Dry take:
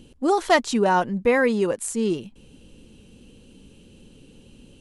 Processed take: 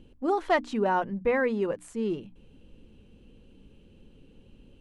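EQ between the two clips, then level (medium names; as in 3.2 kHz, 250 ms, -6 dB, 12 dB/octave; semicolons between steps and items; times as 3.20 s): tone controls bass -4 dB, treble -15 dB; bass shelf 120 Hz +10 dB; hum notches 60/120/180/240/300 Hz; -6.0 dB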